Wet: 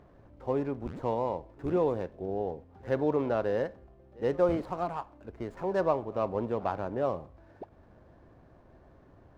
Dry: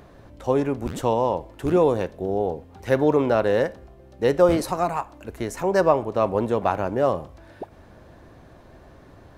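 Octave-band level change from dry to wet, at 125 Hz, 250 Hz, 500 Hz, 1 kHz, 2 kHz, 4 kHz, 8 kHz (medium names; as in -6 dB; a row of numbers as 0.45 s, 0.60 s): -8.5 dB, -8.5 dB, -8.5 dB, -9.0 dB, -11.0 dB, under -10 dB, under -20 dB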